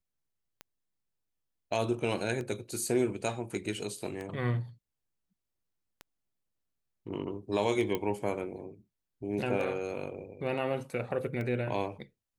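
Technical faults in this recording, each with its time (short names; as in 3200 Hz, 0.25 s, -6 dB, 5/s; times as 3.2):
tick 33 1/3 rpm -26 dBFS
7.95 pop -18 dBFS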